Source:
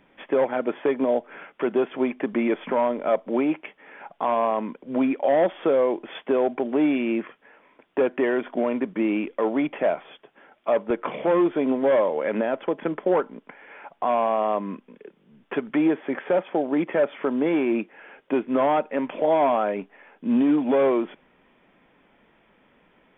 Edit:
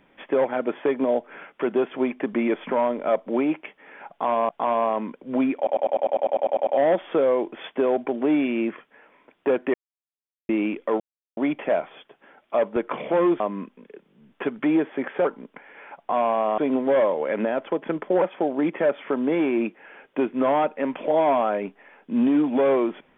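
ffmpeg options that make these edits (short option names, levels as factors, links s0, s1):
-filter_complex "[0:a]asplit=20[s0][s1][s2][s3][s4][s5][s6][s7][s8][s9][s10][s11][s12][s13][s14][s15][s16][s17][s18][s19];[s0]atrim=end=4.492[s20];[s1]atrim=start=4.098:end=5.282[s21];[s2]atrim=start=5.178:end=5.282[s22];[s3]atrim=start=5.178:end=5.282[s23];[s4]atrim=start=5.178:end=5.282[s24];[s5]atrim=start=5.178:end=5.282[s25];[s6]atrim=start=5.178:end=5.282[s26];[s7]atrim=start=5.178:end=5.282[s27];[s8]atrim=start=5.178:end=5.282[s28];[s9]atrim=start=5.178:end=5.282[s29];[s10]atrim=start=5.178:end=5.282[s30];[s11]atrim=start=5.178:end=5.282[s31];[s12]atrim=start=5.178:end=8.25,asetpts=PTS-STARTPTS,afade=t=out:st=3.068:d=0.004:c=hsin[s32];[s13]atrim=start=8.25:end=9,asetpts=PTS-STARTPTS,volume=0[s33];[s14]atrim=start=9:end=9.51,asetpts=PTS-STARTPTS,afade=t=in:d=0.004:c=hsin,afade=t=out:st=0.506:d=0.004:c=hsin,apad=pad_dur=0.37[s34];[s15]atrim=start=9.51:end=11.542,asetpts=PTS-STARTPTS,afade=t=in:d=0.004:c=hsin[s35];[s16]atrim=start=14.508:end=16.362[s36];[s17]atrim=start=13.178:end=14.512[s37];[s18]atrim=start=11.538:end=13.182[s38];[s19]atrim=start=16.358[s39];[s20][s21]acrossfade=d=0.004:c1=hsin:c2=hsin[s40];[s40][s22]acrossfade=d=0.004:c1=hsin:c2=hsin[s41];[s41][s23]acrossfade=d=0.004:c1=hsin:c2=hsin[s42];[s42][s24]acrossfade=d=0.004:c1=hsin:c2=hsin[s43];[s43][s25]acrossfade=d=0.004:c1=hsin:c2=hsin[s44];[s44][s26]acrossfade=d=0.004:c1=hsin:c2=hsin[s45];[s45][s27]acrossfade=d=0.004:c1=hsin:c2=hsin[s46];[s46][s28]acrossfade=d=0.004:c1=hsin:c2=hsin[s47];[s47][s29]acrossfade=d=0.004:c1=hsin:c2=hsin[s48];[s48][s30]acrossfade=d=0.004:c1=hsin:c2=hsin[s49];[s49][s31]acrossfade=d=0.004:c1=hsin:c2=hsin[s50];[s32][s33][s34][s35]concat=n=4:v=0:a=1[s51];[s50][s51]acrossfade=d=0.004:c1=hsin:c2=hsin[s52];[s52][s36]acrossfade=d=0.004:c1=hsin:c2=hsin[s53];[s53][s37]acrossfade=d=0.004:c1=hsin:c2=hsin[s54];[s54][s38]acrossfade=d=0.004:c1=hsin:c2=hsin[s55];[s55][s39]acrossfade=d=0.004:c1=hsin:c2=hsin"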